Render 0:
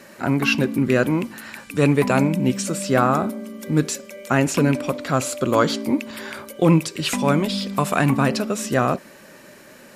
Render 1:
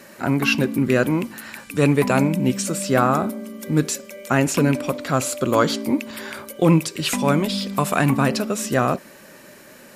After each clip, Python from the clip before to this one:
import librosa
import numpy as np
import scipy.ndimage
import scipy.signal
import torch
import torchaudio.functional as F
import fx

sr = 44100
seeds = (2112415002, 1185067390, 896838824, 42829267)

y = fx.high_shelf(x, sr, hz=11000.0, db=6.5)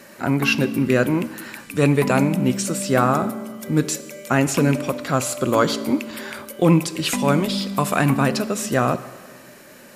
y = fx.rev_plate(x, sr, seeds[0], rt60_s=1.5, hf_ratio=0.9, predelay_ms=0, drr_db=14.0)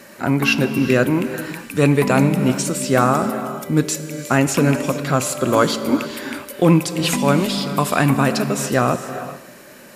y = fx.rev_gated(x, sr, seeds[1], gate_ms=450, shape='rising', drr_db=11.0)
y = F.gain(torch.from_numpy(y), 2.0).numpy()